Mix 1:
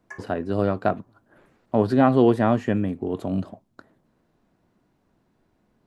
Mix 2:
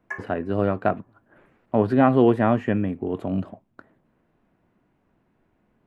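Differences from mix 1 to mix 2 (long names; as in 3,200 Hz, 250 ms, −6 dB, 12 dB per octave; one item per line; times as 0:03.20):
background +6.5 dB
master: add high shelf with overshoot 3,400 Hz −8 dB, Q 1.5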